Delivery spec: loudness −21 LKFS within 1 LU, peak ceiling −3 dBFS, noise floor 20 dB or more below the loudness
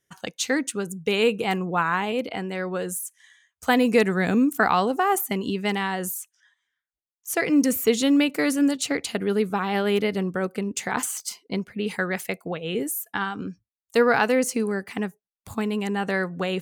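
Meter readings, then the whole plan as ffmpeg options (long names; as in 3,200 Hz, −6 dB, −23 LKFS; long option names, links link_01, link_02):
integrated loudness −24.5 LKFS; sample peak −7.5 dBFS; target loudness −21.0 LKFS
→ -af "volume=3.5dB"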